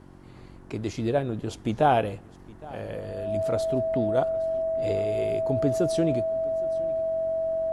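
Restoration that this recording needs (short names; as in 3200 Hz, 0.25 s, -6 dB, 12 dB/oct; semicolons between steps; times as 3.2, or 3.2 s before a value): de-hum 46.2 Hz, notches 8; notch 650 Hz, Q 30; inverse comb 0.814 s -21.5 dB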